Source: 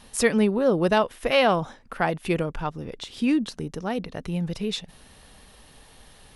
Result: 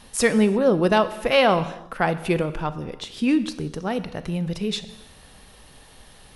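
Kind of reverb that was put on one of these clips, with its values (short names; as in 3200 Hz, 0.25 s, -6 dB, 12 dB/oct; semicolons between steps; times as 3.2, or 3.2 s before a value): non-linear reverb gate 0.38 s falling, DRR 11.5 dB; gain +2 dB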